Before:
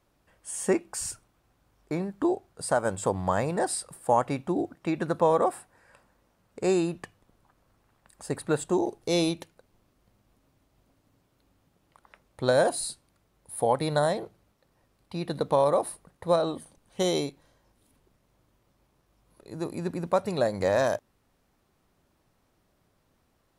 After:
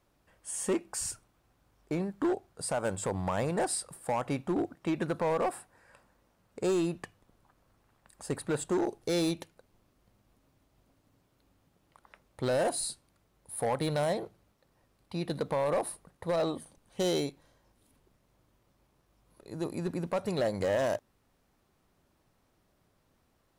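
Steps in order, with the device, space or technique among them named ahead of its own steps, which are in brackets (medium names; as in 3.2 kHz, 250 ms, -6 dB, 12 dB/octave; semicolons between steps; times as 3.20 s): limiter into clipper (peak limiter -17 dBFS, peak gain reduction 6.5 dB; hard clipper -22.5 dBFS, distortion -15 dB); trim -1.5 dB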